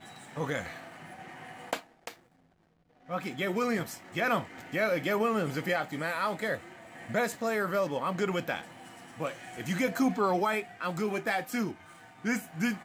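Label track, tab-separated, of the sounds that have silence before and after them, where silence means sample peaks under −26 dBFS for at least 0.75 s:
1.730000	2.080000	sound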